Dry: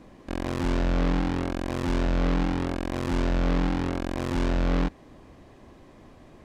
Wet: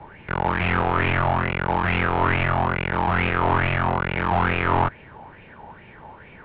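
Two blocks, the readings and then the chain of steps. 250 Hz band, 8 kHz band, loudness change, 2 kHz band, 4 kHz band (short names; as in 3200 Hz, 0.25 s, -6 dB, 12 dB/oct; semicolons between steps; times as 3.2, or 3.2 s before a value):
-1.5 dB, under -30 dB, +5.5 dB, +13.5 dB, +5.0 dB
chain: mistuned SSB -170 Hz 210–3400 Hz; LFO bell 2.3 Hz 800–2500 Hz +17 dB; gain +5 dB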